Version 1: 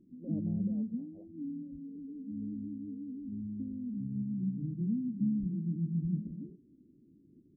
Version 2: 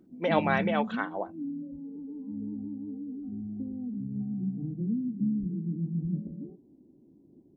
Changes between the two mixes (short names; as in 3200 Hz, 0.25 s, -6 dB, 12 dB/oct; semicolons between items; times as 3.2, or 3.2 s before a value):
speech +10.5 dB; master: remove Gaussian blur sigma 24 samples